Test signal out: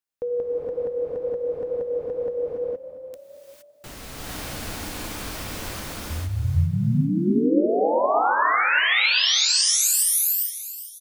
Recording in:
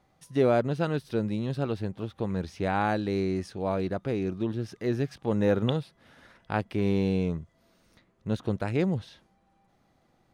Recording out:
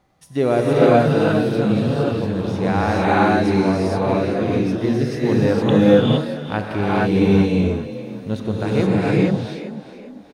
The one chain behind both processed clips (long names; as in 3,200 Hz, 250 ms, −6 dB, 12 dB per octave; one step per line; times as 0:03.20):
on a send: echo with shifted repeats 400 ms, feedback 36%, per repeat +32 Hz, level −13 dB
on the sum: reverb whose tail is shaped and stops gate 490 ms rising, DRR −6.5 dB
level +4 dB